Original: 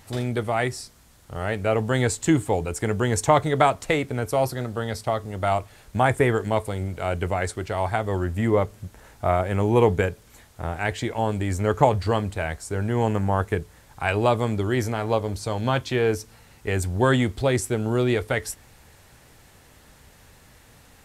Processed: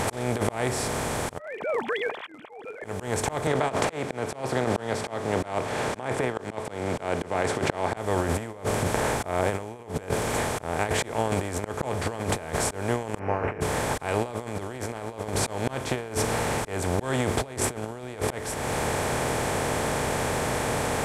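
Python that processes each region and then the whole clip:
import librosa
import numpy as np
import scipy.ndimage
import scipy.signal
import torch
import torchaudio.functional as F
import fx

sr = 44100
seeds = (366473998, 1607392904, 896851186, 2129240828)

y = fx.chain(x, sr, fx.sine_speech(),
    fx.differentiator(), at=(1.38, 2.85))
y = fx.chain(y, sr, fx.over_compress(threshold_db=-23.0, ratio=-0.5),
    fx.bandpass_edges(low_hz=170.0, high_hz=4300.0), at=(3.47, 7.97))
y = fx.chain(y, sr, fx.doubler(ms=28.0, db=-5.5),
    fx.resample_bad(factor=8, down='none', up='filtered'), at=(13.19, 13.61))
y = fx.bin_compress(y, sr, power=0.4)
y = fx.auto_swell(y, sr, attack_ms=460.0)
y = fx.over_compress(y, sr, threshold_db=-23.0, ratio=-0.5)
y = y * 10.0 ** (-3.0 / 20.0)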